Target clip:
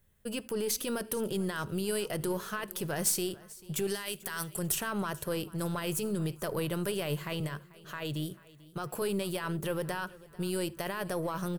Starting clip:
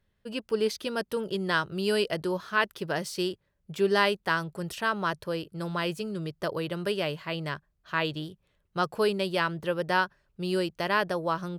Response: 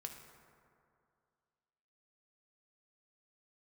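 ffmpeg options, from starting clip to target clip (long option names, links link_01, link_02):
-filter_complex "[0:a]asettb=1/sr,asplit=3[link_01][link_02][link_03];[link_01]atrim=end=3.874[link_04];[link_02]atrim=start=3.87:end=4.59,asetpts=PTS-STARTPTS,afade=type=in:duration=0.004:curve=qsin,afade=type=out:start_time=0.716:duration=0.004:curve=qsin,tiltshelf=frequency=1500:gain=-7[link_05];[link_03]atrim=start=4.586[link_06];[link_04][link_05]acrossfade=duration=0.004:curve1=hsin:curve2=qsin[link_07];[link_07][link_06]acrossfade=duration=0.004:curve1=qsin:curve2=hsin,asettb=1/sr,asplit=3[link_08][link_09][link_10];[link_08]atrim=end=7.404[link_11];[link_09]atrim=start=7.4:end=9.02,asetpts=PTS-STARTPTS,afade=type=in:duration=0.004:curve=qsin,afade=type=out:start_time=1.616:duration=0.004:curve=qsin,highpass=frequency=110:width=0.5412,highpass=frequency=110:width=1.3066[link_12];[link_10]atrim=start=9.016[link_13];[link_11][link_12]acrossfade=duration=0.004:curve1=hsin:curve2=qsin[link_14];[link_14][link_13]acrossfade=duration=0.004:curve1=qsin:curve2=hsin,alimiter=level_in=3dB:limit=-24dB:level=0:latency=1:release=25,volume=-3dB,aexciter=amount=4.4:drive=6.4:freq=6600,aeval=exprs='0.15*(cos(1*acos(clip(val(0)/0.15,-1,1)))-cos(1*PI/2))+0.0133*(cos(6*acos(clip(val(0)/0.15,-1,1)))-cos(6*PI/2))+0.0119*(cos(8*acos(clip(val(0)/0.15,-1,1)))-cos(8*PI/2))':channel_layout=same,aecho=1:1:441|882|1323:0.0891|0.0428|0.0205,asplit=2[link_15][link_16];[1:a]atrim=start_sample=2205,atrim=end_sample=4410,lowshelf=frequency=200:gain=11[link_17];[link_16][link_17]afir=irnorm=-1:irlink=0,volume=-4.5dB[link_18];[link_15][link_18]amix=inputs=2:normalize=0,volume=-1.5dB"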